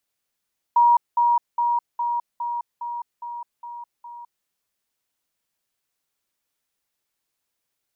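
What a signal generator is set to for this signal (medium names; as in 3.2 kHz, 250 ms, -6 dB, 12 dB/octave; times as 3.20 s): level ladder 952 Hz -12 dBFS, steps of -3 dB, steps 9, 0.21 s 0.20 s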